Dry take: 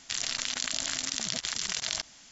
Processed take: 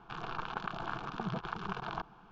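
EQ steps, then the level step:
low-pass filter 1,800 Hz 24 dB per octave
phaser with its sweep stopped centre 390 Hz, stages 8
+9.5 dB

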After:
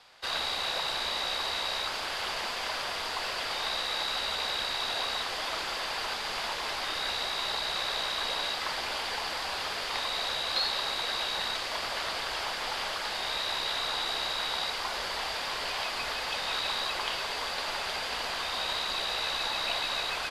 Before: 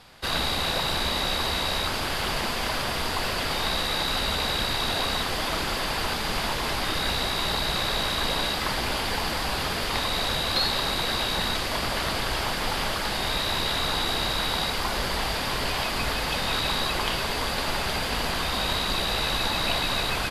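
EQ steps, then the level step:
three-way crossover with the lows and the highs turned down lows −15 dB, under 430 Hz, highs −17 dB, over 7,300 Hz
high-shelf EQ 8,500 Hz +9.5 dB
−5.0 dB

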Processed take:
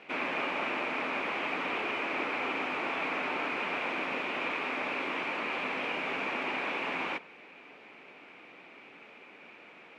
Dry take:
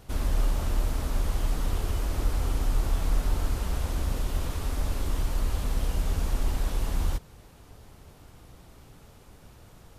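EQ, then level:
high-pass filter 250 Hz 24 dB per octave
dynamic equaliser 1,000 Hz, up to +4 dB, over −51 dBFS, Q 0.94
low-pass with resonance 2,400 Hz, resonance Q 7.2
+1.5 dB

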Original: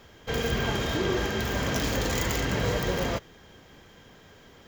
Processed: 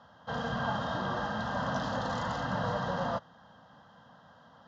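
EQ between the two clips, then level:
high-frequency loss of the air 280 metres
loudspeaker in its box 200–9,400 Hz, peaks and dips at 310 Hz −7 dB, 2,300 Hz −5 dB, 9,000 Hz −5 dB
phaser with its sweep stopped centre 960 Hz, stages 4
+4.0 dB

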